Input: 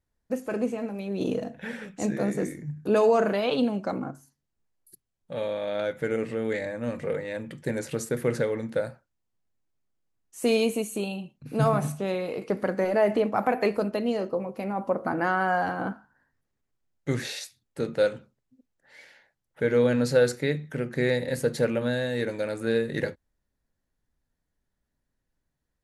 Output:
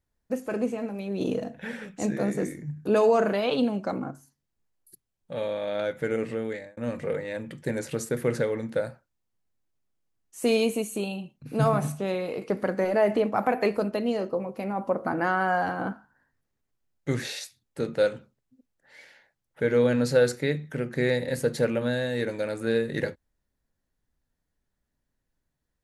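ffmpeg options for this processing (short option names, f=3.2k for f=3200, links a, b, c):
-filter_complex "[0:a]asplit=2[a][b];[a]atrim=end=6.77,asetpts=PTS-STARTPTS,afade=t=out:st=6.34:d=0.43[c];[b]atrim=start=6.77,asetpts=PTS-STARTPTS,afade=t=in:d=0.004:c=hsin[d];[c][d]concat=n=2:v=0:a=1"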